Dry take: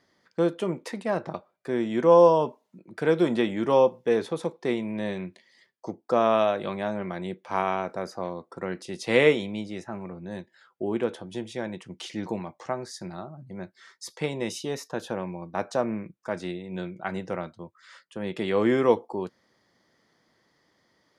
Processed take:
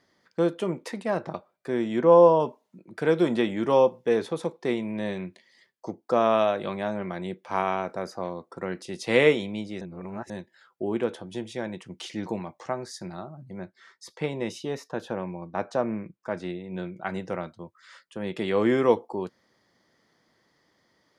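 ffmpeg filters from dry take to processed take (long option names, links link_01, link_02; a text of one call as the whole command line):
ffmpeg -i in.wav -filter_complex "[0:a]asettb=1/sr,asplit=3[link_01][link_02][link_03];[link_01]atrim=end=1.994[link_04];[link_02]atrim=start=1.99:end=2.4,asetpts=PTS-STARTPTS,afade=type=in:duration=0.004:curve=qsin,afade=type=out:start_time=0.406:duration=0.004:curve=qsin,aemphasis=mode=reproduction:type=75fm[link_05];[link_03]atrim=start=2.396[link_06];[link_04][link_05]acrossfade=duration=0.004:curve1=hsin:curve2=qsin[link_07];[link_07][link_06]acrossfade=duration=0.004:curve1=qsin:curve2=hsin,asettb=1/sr,asplit=3[link_08][link_09][link_10];[link_08]atrim=end=13.604[link_11];[link_09]atrim=start=13.6:end=16.94,asetpts=PTS-STARTPTS,afade=type=in:duration=0.004:curve=qsin,afade=type=out:start_time=3.336:duration=0.004:curve=qsin,highshelf=frequency=4800:gain=-10[link_12];[link_10]atrim=start=16.936[link_13];[link_11][link_12]acrossfade=duration=0.004:curve1=hsin:curve2=qsin[link_14];[link_14][link_13]acrossfade=duration=0.004:curve1=qsin:curve2=hsin,asplit=3[link_15][link_16][link_17];[link_15]atrim=end=9.812[link_18];[link_16]atrim=start=9.808:end=10.302,asetpts=PTS-STARTPTS,areverse[link_19];[link_17]atrim=start=10.298[link_20];[link_18][link_19]acrossfade=duration=0.004:curve1=hsin:curve2=hsin[link_21];[link_21][link_20]acrossfade=duration=0.004:curve1=hsin:curve2=hsin" out.wav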